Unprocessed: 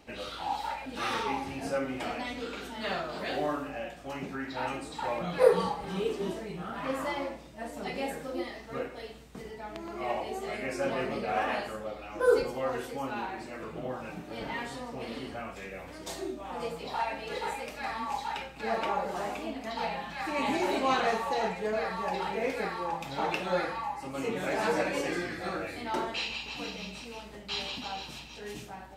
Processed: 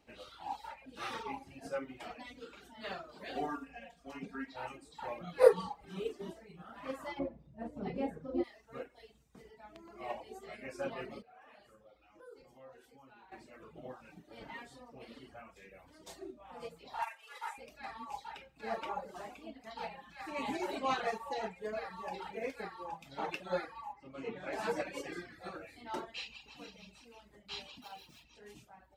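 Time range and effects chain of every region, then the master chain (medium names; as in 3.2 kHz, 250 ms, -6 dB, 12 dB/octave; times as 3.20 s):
3.35–4.56 s: treble shelf 11 kHz -6.5 dB + comb 4.3 ms, depth 98%
7.19–8.44 s: high-pass 79 Hz 24 dB/octave + tilt EQ -4.5 dB/octave
11.22–13.32 s: compression 2.5:1, threshold -33 dBFS + feedback comb 66 Hz, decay 0.99 s, mix 70%
17.02–17.58 s: CVSD coder 64 kbps + resonant high-pass 1.1 kHz, resonance Q 2.1 + band-stop 4.2 kHz, Q 11
23.93–24.53 s: low-pass 3.7 kHz + careless resampling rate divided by 2×, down none, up filtered
27.82–28.24 s: median filter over 5 samples + high-pass 63 Hz + treble shelf 6.6 kHz +6 dB
whole clip: reverb removal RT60 0.94 s; upward expansion 1.5:1, over -41 dBFS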